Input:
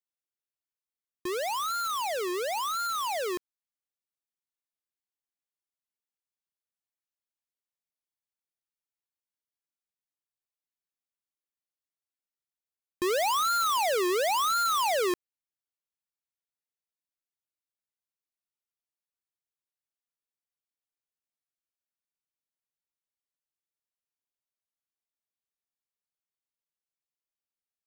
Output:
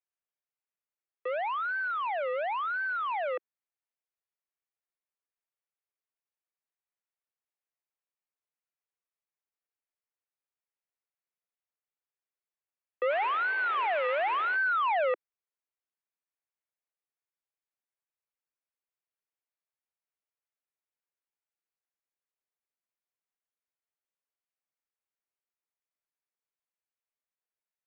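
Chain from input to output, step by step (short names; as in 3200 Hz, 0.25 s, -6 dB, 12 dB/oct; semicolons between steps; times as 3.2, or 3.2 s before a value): 13.1–14.55 spectral whitening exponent 0.3; mistuned SSB +150 Hz 210–2500 Hz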